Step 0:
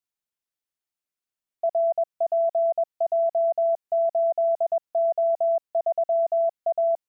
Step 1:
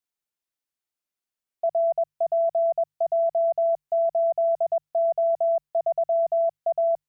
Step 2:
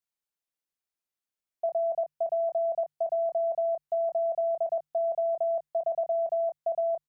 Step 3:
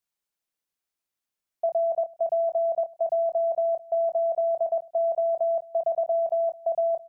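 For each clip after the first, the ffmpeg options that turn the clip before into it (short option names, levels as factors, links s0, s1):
-af "bandreject=f=50:t=h:w=6,bandreject=f=100:t=h:w=6,bandreject=f=150:t=h:w=6"
-filter_complex "[0:a]asplit=2[s0][s1];[s1]adelay=26,volume=0.335[s2];[s0][s2]amix=inputs=2:normalize=0,volume=0.631"
-af "aecho=1:1:215:0.075,volume=1.5"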